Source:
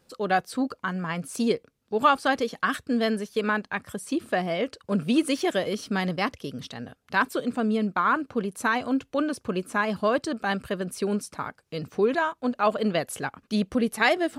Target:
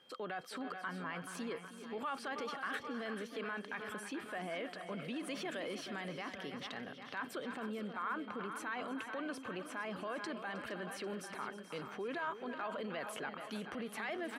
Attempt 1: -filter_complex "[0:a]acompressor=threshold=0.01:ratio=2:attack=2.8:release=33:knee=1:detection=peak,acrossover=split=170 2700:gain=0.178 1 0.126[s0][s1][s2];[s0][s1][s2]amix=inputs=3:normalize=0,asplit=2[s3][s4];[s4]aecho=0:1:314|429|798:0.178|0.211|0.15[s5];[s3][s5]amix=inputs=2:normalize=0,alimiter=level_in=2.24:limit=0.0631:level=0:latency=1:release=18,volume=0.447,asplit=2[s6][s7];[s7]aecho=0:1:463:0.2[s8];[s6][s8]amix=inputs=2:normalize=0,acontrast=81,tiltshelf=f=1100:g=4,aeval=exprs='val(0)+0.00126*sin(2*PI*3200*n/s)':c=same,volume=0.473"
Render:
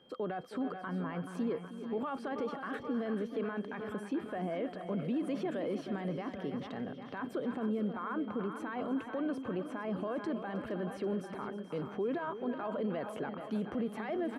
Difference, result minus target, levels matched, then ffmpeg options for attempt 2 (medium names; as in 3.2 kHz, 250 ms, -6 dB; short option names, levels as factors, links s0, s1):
1 kHz band -3.5 dB
-filter_complex "[0:a]acompressor=threshold=0.01:ratio=2:attack=2.8:release=33:knee=1:detection=peak,acrossover=split=170 2700:gain=0.178 1 0.126[s0][s1][s2];[s0][s1][s2]amix=inputs=3:normalize=0,asplit=2[s3][s4];[s4]aecho=0:1:314|429|798:0.178|0.211|0.15[s5];[s3][s5]amix=inputs=2:normalize=0,alimiter=level_in=2.24:limit=0.0631:level=0:latency=1:release=18,volume=0.447,asplit=2[s6][s7];[s7]aecho=0:1:463:0.2[s8];[s6][s8]amix=inputs=2:normalize=0,acontrast=81,tiltshelf=f=1100:g=-6,aeval=exprs='val(0)+0.00126*sin(2*PI*3200*n/s)':c=same,volume=0.473"